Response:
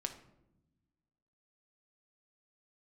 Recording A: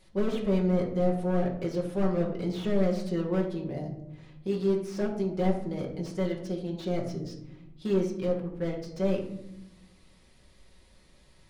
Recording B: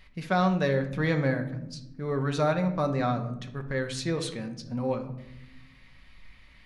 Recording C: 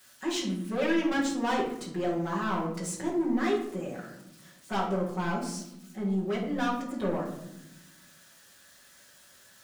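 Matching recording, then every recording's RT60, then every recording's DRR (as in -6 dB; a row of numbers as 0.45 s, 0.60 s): B; 0.90 s, 0.90 s, 0.85 s; -0.5 dB, 4.5 dB, -9.0 dB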